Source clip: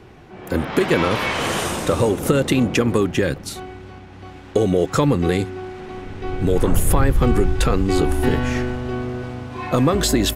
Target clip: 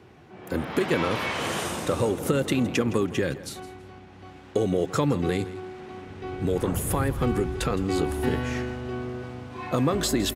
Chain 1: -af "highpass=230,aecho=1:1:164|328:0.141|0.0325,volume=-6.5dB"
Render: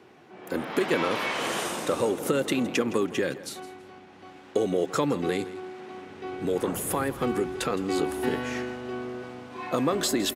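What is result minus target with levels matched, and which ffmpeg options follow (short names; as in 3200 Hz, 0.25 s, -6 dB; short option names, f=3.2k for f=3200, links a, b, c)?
125 Hz band -8.0 dB
-af "highpass=75,aecho=1:1:164|328:0.141|0.0325,volume=-6.5dB"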